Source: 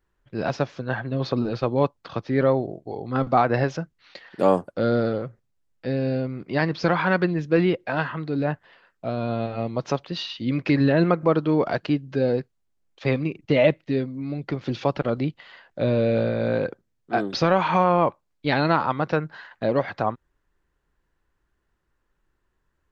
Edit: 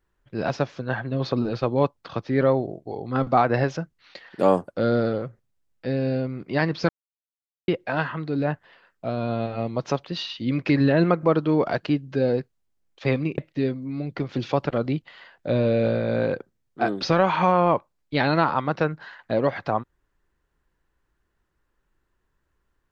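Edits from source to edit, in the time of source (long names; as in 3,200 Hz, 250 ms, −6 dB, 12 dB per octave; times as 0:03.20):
0:06.89–0:07.68: silence
0:13.38–0:13.70: remove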